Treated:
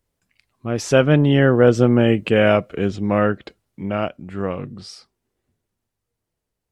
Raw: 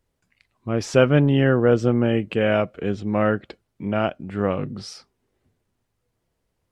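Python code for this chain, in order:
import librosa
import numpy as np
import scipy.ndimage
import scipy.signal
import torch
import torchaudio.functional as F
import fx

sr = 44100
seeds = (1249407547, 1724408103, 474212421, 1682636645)

y = fx.doppler_pass(x, sr, speed_mps=12, closest_m=13.0, pass_at_s=2.2)
y = fx.high_shelf(y, sr, hz=5600.0, db=6.0)
y = F.gain(torch.from_numpy(y), 5.0).numpy()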